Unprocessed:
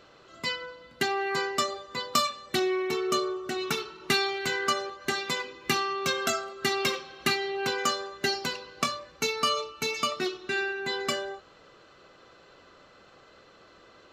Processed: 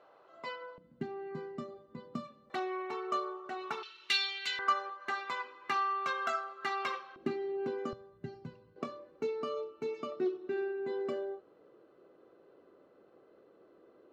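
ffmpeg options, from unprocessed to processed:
ffmpeg -i in.wav -af "asetnsamples=nb_out_samples=441:pad=0,asendcmd='0.78 bandpass f 190;2.5 bandpass f 890;3.83 bandpass f 3200;4.59 bandpass f 1100;7.16 bandpass f 300;7.93 bandpass f 120;8.76 bandpass f 370',bandpass=frequency=760:width_type=q:width=1.8:csg=0" out.wav

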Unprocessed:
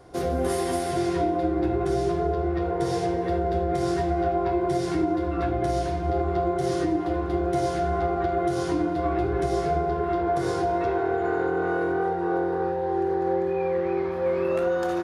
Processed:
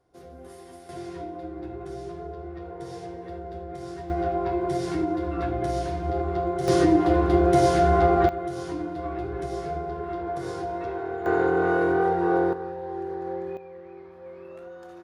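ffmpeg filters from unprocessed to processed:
ffmpeg -i in.wav -af "asetnsamples=nb_out_samples=441:pad=0,asendcmd='0.89 volume volume -12dB;4.1 volume volume -2dB;6.68 volume volume 6dB;8.29 volume volume -6.5dB;11.26 volume volume 3dB;12.53 volume volume -7.5dB;13.57 volume volume -18dB',volume=-19.5dB" out.wav

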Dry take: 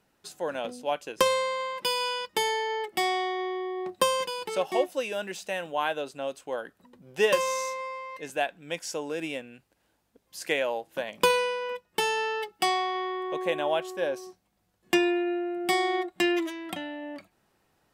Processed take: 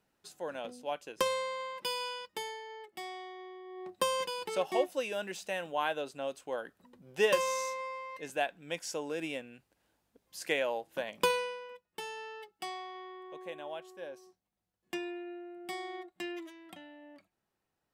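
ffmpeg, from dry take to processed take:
ffmpeg -i in.wav -af "volume=4.5dB,afade=type=out:start_time=1.94:duration=0.67:silence=0.375837,afade=type=in:start_time=3.64:duration=0.62:silence=0.251189,afade=type=out:start_time=11.08:duration=0.61:silence=0.281838" out.wav

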